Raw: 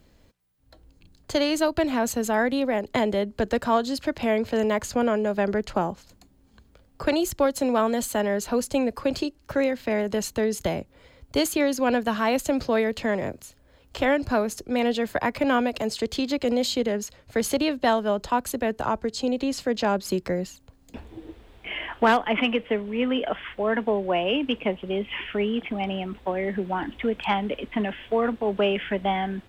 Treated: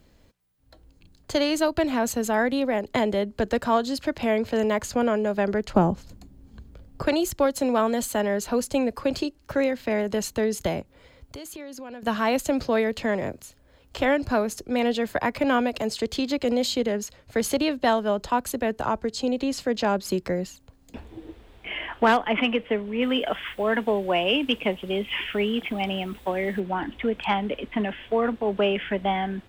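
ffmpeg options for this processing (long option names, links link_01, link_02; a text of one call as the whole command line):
ffmpeg -i in.wav -filter_complex "[0:a]asettb=1/sr,asplit=3[link_01][link_02][link_03];[link_01]atrim=end=5.744[link_04];[link_02]atrim=start=5.74:end=7.02,asetpts=PTS-STARTPTS,afade=type=in:duration=0.004:curve=qsin,afade=type=out:start_time=1.276:duration=0.004:curve=qsin,lowshelf=frequency=390:gain=12[link_05];[link_03]atrim=start=7.016[link_06];[link_04][link_05]acrossfade=duration=0.004:curve1=hsin:curve2=qsin[link_07];[link_07][link_06]acrossfade=duration=0.004:curve1=qsin:curve2=hsin,asettb=1/sr,asplit=3[link_08][link_09][link_10];[link_08]atrim=end=10.814[link_11];[link_09]atrim=start=10.81:end=12.03,asetpts=PTS-STARTPTS,afade=type=in:duration=0.004:curve=qsin,afade=type=out:start_time=1.216:duration=0.004:curve=qsin,acompressor=threshold=-37dB:ratio=6:attack=3.2:release=140:knee=1:detection=peak[link_12];[link_10]atrim=start=12.026[link_13];[link_11][link_12]acrossfade=duration=0.004:curve1=hsin:curve2=qsin[link_14];[link_14][link_13]acrossfade=duration=0.004:curve1=qsin:curve2=hsin,asplit=3[link_15][link_16][link_17];[link_15]afade=type=out:start_time=23.01:duration=0.02[link_18];[link_16]aemphasis=mode=production:type=75kf,afade=type=in:start_time=23.01:duration=0.02,afade=type=out:start_time=26.59:duration=0.02[link_19];[link_17]afade=type=in:start_time=26.59:duration=0.02[link_20];[link_18][link_19][link_20]amix=inputs=3:normalize=0" out.wav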